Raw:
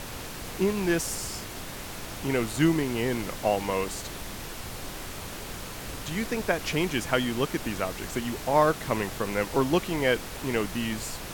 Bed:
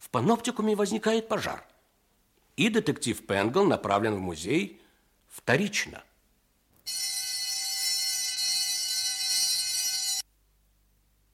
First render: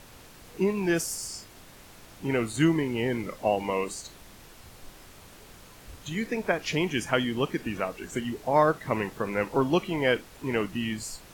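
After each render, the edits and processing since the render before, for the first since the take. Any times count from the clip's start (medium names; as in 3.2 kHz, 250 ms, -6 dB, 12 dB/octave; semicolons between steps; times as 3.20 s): noise print and reduce 12 dB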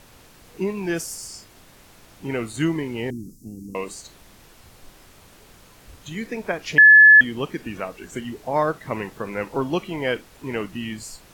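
3.10–3.75 s: inverse Chebyshev band-stop 550–3400 Hz; 6.78–7.21 s: bleep 1.72 kHz -6 dBFS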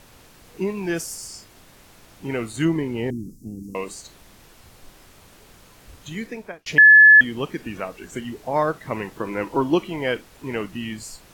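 2.65–3.63 s: tilt shelf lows +3 dB; 6.18–6.66 s: fade out; 9.16–9.88 s: small resonant body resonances 320/970/3000 Hz, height 9 dB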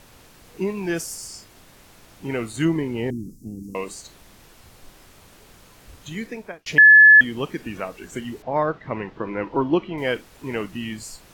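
8.42–9.98 s: distance through air 230 m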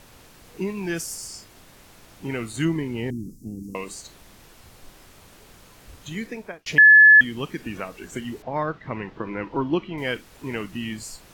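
dynamic bell 580 Hz, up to -6 dB, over -33 dBFS, Q 0.76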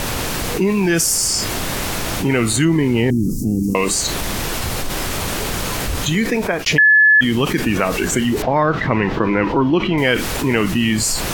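level flattener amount 70%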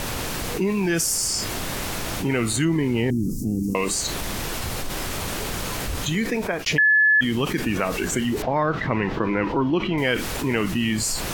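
trim -6 dB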